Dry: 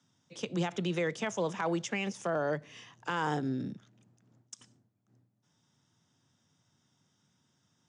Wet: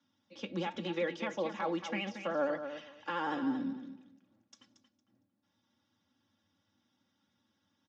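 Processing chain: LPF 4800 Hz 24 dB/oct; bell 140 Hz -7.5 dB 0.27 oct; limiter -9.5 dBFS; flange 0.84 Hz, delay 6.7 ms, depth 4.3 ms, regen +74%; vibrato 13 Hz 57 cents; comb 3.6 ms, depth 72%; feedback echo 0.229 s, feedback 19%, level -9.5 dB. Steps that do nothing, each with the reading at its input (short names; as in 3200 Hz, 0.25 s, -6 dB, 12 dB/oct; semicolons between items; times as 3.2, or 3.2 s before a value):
limiter -9.5 dBFS: input peak -19.0 dBFS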